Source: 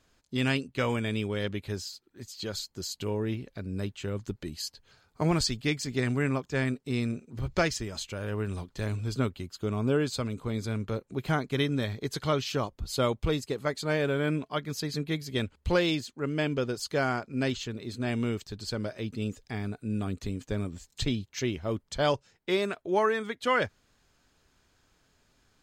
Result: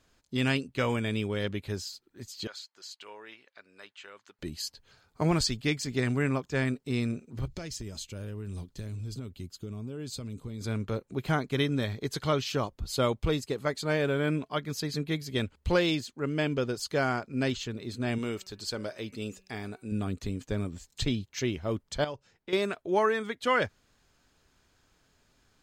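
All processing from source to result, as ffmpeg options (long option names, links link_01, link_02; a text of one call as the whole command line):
ffmpeg -i in.wav -filter_complex "[0:a]asettb=1/sr,asplit=3[link_01][link_02][link_03];[link_01]atrim=end=2.474[link_04];[link_02]atrim=start=2.47:end=4.39,asetpts=PTS-STARTPTS,afade=type=in:duration=0.004:curve=qsin,afade=type=out:start_time=1.916:duration=0.004:curve=qsin,highpass=1200,aemphasis=mode=reproduction:type=75fm[link_05];[link_03]atrim=start=4.386[link_06];[link_04][link_05]acrossfade=duration=0.004:curve1=hsin:curve2=qsin[link_07];[link_07][link_06]acrossfade=duration=0.004:curve1=qsin:curve2=hsin,asettb=1/sr,asplit=3[link_08][link_09][link_10];[link_08]atrim=end=7.454[link_11];[link_09]atrim=start=7.45:end=10.61,asetpts=PTS-STARTPTS,afade=type=in:duration=0.004:curve=qsin,afade=type=out:start_time=3.156:duration=0.004:curve=qsin,equalizer=frequency=1200:width=0.45:gain=-10.5,acompressor=threshold=-33dB:ratio=12:attack=3.2:release=140:knee=1:detection=peak[link_12];[link_10]atrim=start=10.606[link_13];[link_11][link_12]acrossfade=duration=0.004:curve1=hsin:curve2=qsin[link_14];[link_14][link_13]acrossfade=duration=0.004:curve1=qsin:curve2=hsin,asettb=1/sr,asplit=3[link_15][link_16][link_17];[link_15]atrim=end=18.184[link_18];[link_16]atrim=start=18.18:end=19.92,asetpts=PTS-STARTPTS,afade=type=in:duration=0.004:curve=qsin,afade=type=out:start_time=1.736:duration=0.004:curve=qsin,bass=frequency=250:gain=-8,treble=frequency=4000:gain=3,bandreject=frequency=189.5:width_type=h:width=4,bandreject=frequency=379:width_type=h:width=4,bandreject=frequency=568.5:width_type=h:width=4,bandreject=frequency=758:width_type=h:width=4,bandreject=frequency=947.5:width_type=h:width=4,bandreject=frequency=1137:width_type=h:width=4,bandreject=frequency=1326.5:width_type=h:width=4,bandreject=frequency=1516:width_type=h:width=4,bandreject=frequency=1705.5:width_type=h:width=4,bandreject=frequency=1895:width_type=h:width=4,bandreject=frequency=2084.5:width_type=h:width=4,bandreject=frequency=2274:width_type=h:width=4,bandreject=frequency=2463.5:width_type=h:width=4,bandreject=frequency=2653:width_type=h:width=4,bandreject=frequency=2842.5:width_type=h:width=4[link_19];[link_17]atrim=start=19.916[link_20];[link_18][link_19]acrossfade=duration=0.004:curve1=hsin:curve2=qsin[link_21];[link_21][link_20]acrossfade=duration=0.004:curve1=qsin:curve2=hsin,asettb=1/sr,asplit=3[link_22][link_23][link_24];[link_22]atrim=end=22.044[link_25];[link_23]atrim=start=22.04:end=22.53,asetpts=PTS-STARTPTS,afade=type=in:duration=0.004:curve=qsin,afade=type=out:start_time=0.486:duration=0.004:curve=qsin,highshelf=frequency=5000:gain=-6.5,acompressor=threshold=-43dB:ratio=2:attack=3.2:release=140:knee=1:detection=peak[link_26];[link_24]atrim=start=22.526[link_27];[link_25][link_26]acrossfade=duration=0.004:curve1=hsin:curve2=qsin[link_28];[link_28][link_27]acrossfade=duration=0.004:curve1=qsin:curve2=hsin" out.wav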